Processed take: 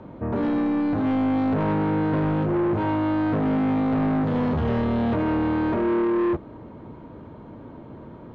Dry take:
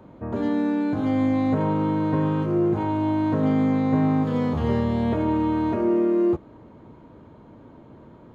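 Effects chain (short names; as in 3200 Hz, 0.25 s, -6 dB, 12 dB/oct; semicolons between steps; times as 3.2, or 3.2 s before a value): soft clip -25.5 dBFS, distortion -9 dB; air absorption 140 m; gain +6 dB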